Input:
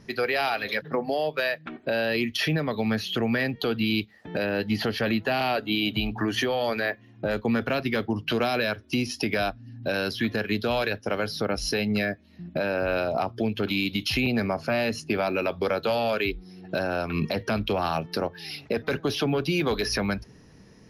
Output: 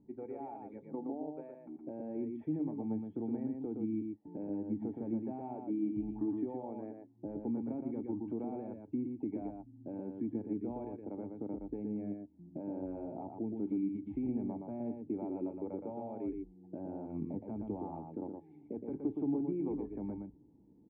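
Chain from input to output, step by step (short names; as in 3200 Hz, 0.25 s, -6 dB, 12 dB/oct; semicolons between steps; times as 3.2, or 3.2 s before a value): vocal tract filter u; echo 0.118 s -4.5 dB; gain -3.5 dB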